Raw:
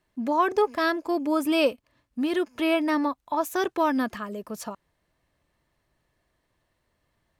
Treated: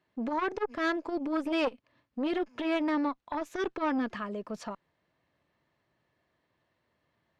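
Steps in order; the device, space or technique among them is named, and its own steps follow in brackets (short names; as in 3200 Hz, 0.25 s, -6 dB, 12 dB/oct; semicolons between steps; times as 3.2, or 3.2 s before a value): dynamic EQ 810 Hz, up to -4 dB, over -33 dBFS, Q 1.4; valve radio (BPF 110–4200 Hz; tube stage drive 19 dB, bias 0.35; core saturation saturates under 530 Hz)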